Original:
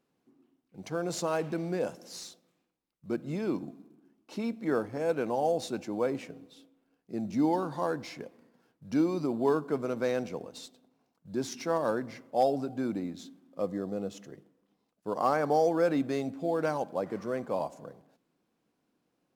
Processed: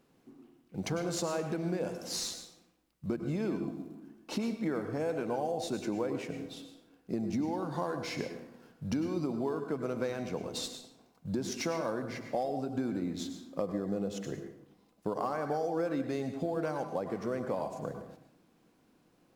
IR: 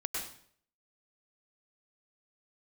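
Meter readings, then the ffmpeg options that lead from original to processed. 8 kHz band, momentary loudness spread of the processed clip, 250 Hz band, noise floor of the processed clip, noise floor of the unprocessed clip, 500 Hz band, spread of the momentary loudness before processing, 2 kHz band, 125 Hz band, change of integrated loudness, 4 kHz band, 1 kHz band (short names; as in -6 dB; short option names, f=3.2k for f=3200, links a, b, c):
+3.0 dB, 11 LU, -2.0 dB, -68 dBFS, -79 dBFS, -4.0 dB, 16 LU, -2.5 dB, +1.0 dB, -4.0 dB, +3.5 dB, -5.5 dB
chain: -filter_complex "[0:a]lowshelf=f=93:g=8.5,acompressor=threshold=-39dB:ratio=10,asplit=2[a][b];[1:a]atrim=start_sample=2205[c];[b][c]afir=irnorm=-1:irlink=0,volume=-5dB[d];[a][d]amix=inputs=2:normalize=0,volume=5dB"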